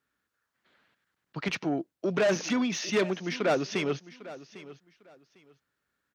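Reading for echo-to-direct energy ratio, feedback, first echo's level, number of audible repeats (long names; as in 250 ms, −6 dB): −17.0 dB, 22%, −17.0 dB, 2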